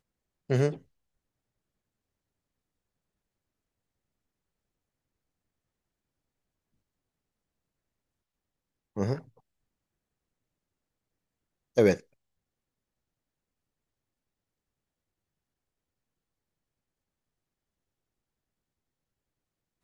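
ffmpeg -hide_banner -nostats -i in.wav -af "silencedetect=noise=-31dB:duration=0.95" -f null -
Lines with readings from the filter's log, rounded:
silence_start: 0.73
silence_end: 8.97 | silence_duration: 8.24
silence_start: 9.18
silence_end: 11.77 | silence_duration: 2.59
silence_start: 11.94
silence_end: 19.83 | silence_duration: 7.89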